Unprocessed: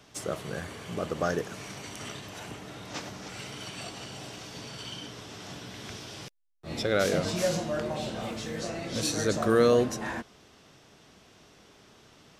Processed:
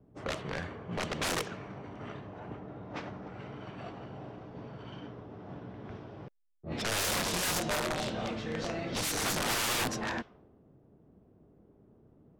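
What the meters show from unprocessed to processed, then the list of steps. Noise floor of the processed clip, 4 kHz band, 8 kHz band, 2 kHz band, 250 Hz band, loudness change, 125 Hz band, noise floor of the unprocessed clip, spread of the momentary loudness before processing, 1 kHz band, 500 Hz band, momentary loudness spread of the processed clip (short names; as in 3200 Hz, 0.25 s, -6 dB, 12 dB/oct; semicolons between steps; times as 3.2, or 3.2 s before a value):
-62 dBFS, +0.5 dB, +1.5 dB, +0.5 dB, -5.5 dB, -3.0 dB, -4.0 dB, -57 dBFS, 16 LU, -1.0 dB, -9.5 dB, 17 LU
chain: wrapped overs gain 25.5 dB; low-pass opened by the level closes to 330 Hz, open at -27.5 dBFS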